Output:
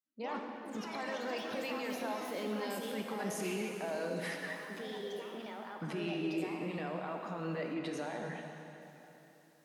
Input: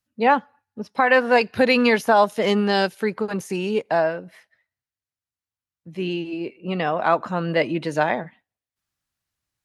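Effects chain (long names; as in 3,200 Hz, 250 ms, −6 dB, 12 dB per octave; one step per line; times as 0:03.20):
source passing by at 0:03.56, 11 m/s, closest 5.7 metres
camcorder AGC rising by 65 dB per second
high-pass filter 170 Hz 24 dB per octave
reversed playback
downward compressor, threshold −35 dBFS, peak gain reduction 17 dB
reversed playback
brickwall limiter −32.5 dBFS, peak gain reduction 11 dB
dense smooth reverb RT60 3.4 s, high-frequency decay 0.9×, DRR 2 dB
delay with pitch and tempo change per echo 82 ms, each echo +4 semitones, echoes 3, each echo −6 dB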